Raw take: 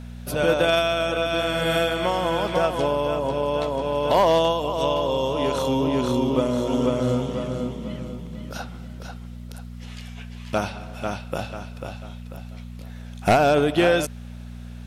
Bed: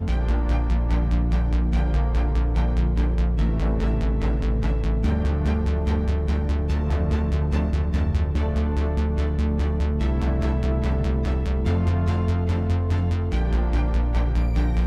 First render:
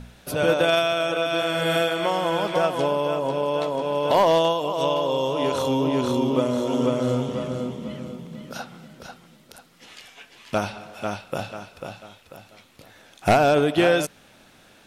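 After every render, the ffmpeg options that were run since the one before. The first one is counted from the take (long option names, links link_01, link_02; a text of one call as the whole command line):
ffmpeg -i in.wav -af "bandreject=frequency=60:width_type=h:width=4,bandreject=frequency=120:width_type=h:width=4,bandreject=frequency=180:width_type=h:width=4,bandreject=frequency=240:width_type=h:width=4" out.wav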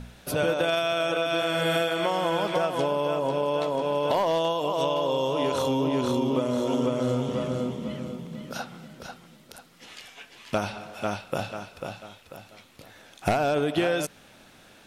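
ffmpeg -i in.wav -af "acompressor=threshold=-21dB:ratio=6" out.wav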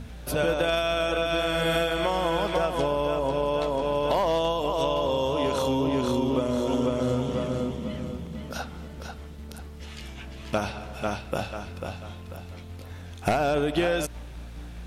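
ffmpeg -i in.wav -i bed.wav -filter_complex "[1:a]volume=-19dB[link_01];[0:a][link_01]amix=inputs=2:normalize=0" out.wav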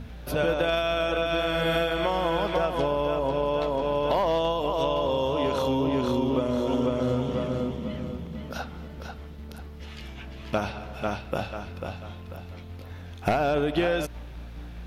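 ffmpeg -i in.wav -af "equalizer=frequency=8400:width=1.1:gain=-10" out.wav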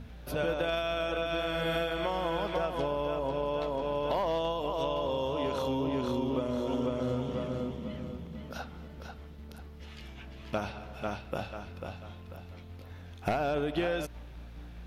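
ffmpeg -i in.wav -af "volume=-6dB" out.wav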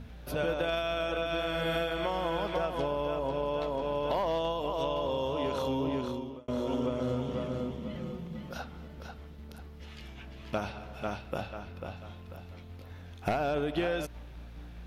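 ffmpeg -i in.wav -filter_complex "[0:a]asettb=1/sr,asplit=3[link_01][link_02][link_03];[link_01]atrim=end=7.954[link_04];[link_02]atrim=start=7.95:end=8.55,asetpts=PTS-STARTPTS,afade=type=in:duration=0.004:curve=qsin,afade=type=out:start_time=0.596:duration=0.004:curve=qsin,aecho=1:1:5.6:0.65,atrim=end_sample=26460[link_05];[link_03]atrim=start=8.546[link_06];[link_04][link_05]acrossfade=duration=0.004:curve1=hsin:curve2=qsin[link_07];[link_07][link_06]acrossfade=duration=0.004:curve1=qsin:curve2=hsin,asettb=1/sr,asplit=3[link_08][link_09][link_10];[link_08]atrim=end=11.414[link_11];[link_09]atrim=start=11.41:end=11.97,asetpts=PTS-STARTPTS,afade=type=in:duration=0.004:curve=qsin,afade=type=out:start_time=0.556:duration=0.004:curve=qsin,equalizer=frequency=7800:width_type=o:width=1.5:gain=-4[link_12];[link_10]atrim=start=11.966[link_13];[link_11][link_12]acrossfade=duration=0.004:curve1=hsin:curve2=qsin[link_14];[link_14][link_13]acrossfade=duration=0.004:curve1=qsin:curve2=hsin,asplit=2[link_15][link_16];[link_15]atrim=end=6.48,asetpts=PTS-STARTPTS,afade=type=out:start_time=5.91:duration=0.57[link_17];[link_16]atrim=start=6.48,asetpts=PTS-STARTPTS,afade=type=in:duration=0.004:curve=hsin[link_18];[link_17][link_18]concat=n=2:v=0:a=1" out.wav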